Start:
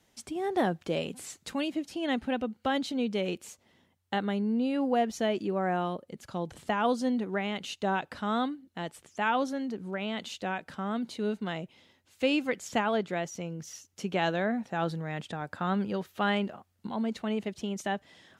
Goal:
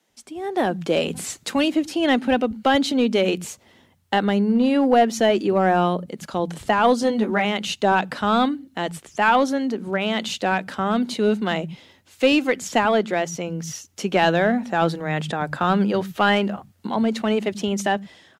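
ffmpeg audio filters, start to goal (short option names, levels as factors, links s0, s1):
-filter_complex "[0:a]acrossover=split=170[s0][s1];[s0]adelay=90[s2];[s2][s1]amix=inputs=2:normalize=0,dynaudnorm=f=200:g=7:m=4.47,asettb=1/sr,asplit=3[s3][s4][s5];[s3]atrim=end=7.014[s6];[s4]atrim=start=7.01:end=7.45,asetpts=PTS-STARTPTS,afade=t=in:d=0.004:c=qsin,afade=t=out:st=0.436:d=0.004:c=qsin,asplit=2[s7][s8];[s8]adelay=14,volume=0.631[s9];[s7][s9]amix=inputs=2:normalize=0,atrim=end_sample=19404[s10];[s5]atrim=start=7.446[s11];[s6][s10]acrossfade=d=0.004:c1=hsin:c2=qsin[s12];[s12][s11]acrossfade=d=0.004:c1=qsin:c2=hsin,asplit=2[s13][s14];[s14]aeval=exprs='clip(val(0),-1,0.211)':c=same,volume=0.631[s15];[s13][s15]amix=inputs=2:normalize=0,volume=0.596"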